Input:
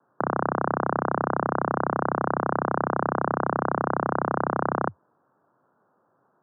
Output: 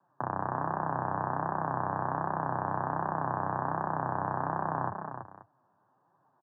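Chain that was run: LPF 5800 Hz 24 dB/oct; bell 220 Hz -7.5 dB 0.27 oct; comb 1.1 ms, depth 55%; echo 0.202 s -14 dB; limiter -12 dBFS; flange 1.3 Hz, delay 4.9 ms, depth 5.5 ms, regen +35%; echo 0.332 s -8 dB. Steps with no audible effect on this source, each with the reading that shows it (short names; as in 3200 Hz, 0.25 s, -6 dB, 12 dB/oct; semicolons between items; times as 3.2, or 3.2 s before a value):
LPF 5800 Hz: input band ends at 1800 Hz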